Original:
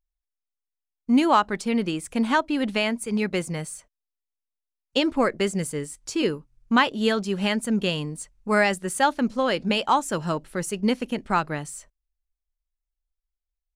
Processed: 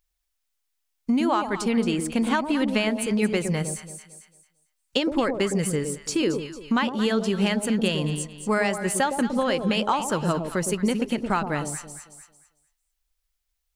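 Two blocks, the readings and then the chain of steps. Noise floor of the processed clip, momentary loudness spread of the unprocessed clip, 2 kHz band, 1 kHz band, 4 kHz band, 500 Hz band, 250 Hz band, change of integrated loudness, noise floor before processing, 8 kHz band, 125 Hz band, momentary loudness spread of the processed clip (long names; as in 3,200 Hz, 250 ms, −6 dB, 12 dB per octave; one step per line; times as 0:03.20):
−77 dBFS, 11 LU, −2.0 dB, −3.0 dB, −1.0 dB, +0.5 dB, +1.0 dB, −0.5 dB, below −85 dBFS, +3.5 dB, +3.0 dB, 6 LU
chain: downward compressor, threshold −24 dBFS, peak gain reduction 10.5 dB
delay that swaps between a low-pass and a high-pass 112 ms, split 840 Hz, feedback 52%, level −5.5 dB
one half of a high-frequency compander encoder only
level +4 dB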